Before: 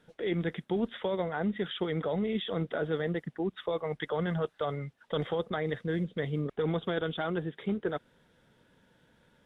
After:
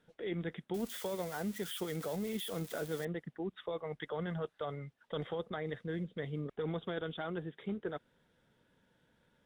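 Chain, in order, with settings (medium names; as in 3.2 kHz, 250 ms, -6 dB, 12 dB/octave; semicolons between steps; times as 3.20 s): 0.74–3.05 s: zero-crossing glitches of -29 dBFS; trim -7 dB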